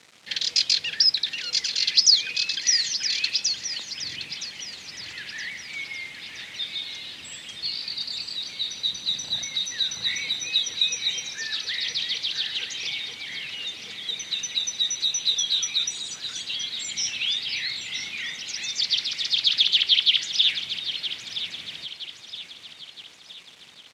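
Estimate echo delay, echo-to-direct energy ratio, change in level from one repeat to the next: 968 ms, -10.0 dB, -6.5 dB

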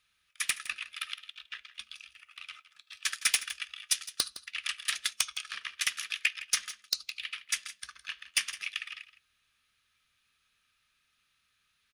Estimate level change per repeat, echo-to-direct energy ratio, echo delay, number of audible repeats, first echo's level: no regular repeats, -15.5 dB, 162 ms, 1, -15.5 dB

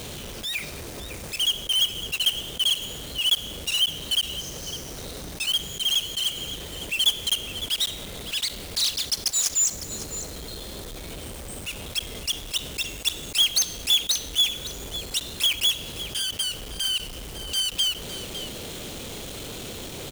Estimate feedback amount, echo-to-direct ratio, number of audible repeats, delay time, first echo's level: no regular repeats, -13.0 dB, 1, 556 ms, -13.0 dB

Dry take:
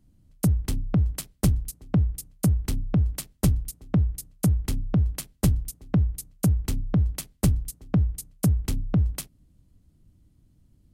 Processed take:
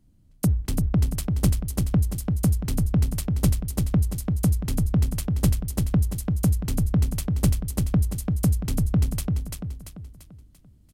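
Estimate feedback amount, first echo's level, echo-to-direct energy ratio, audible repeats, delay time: 43%, -4.0 dB, -3.0 dB, 5, 341 ms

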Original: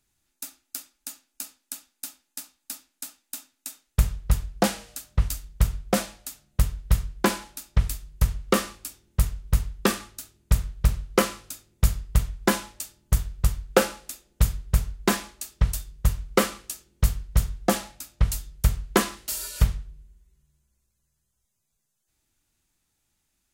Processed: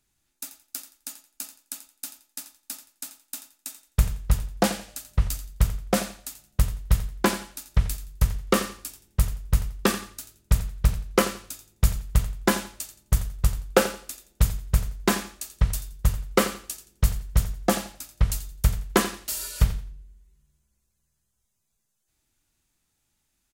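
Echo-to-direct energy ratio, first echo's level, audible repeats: -13.5 dB, -13.5 dB, 2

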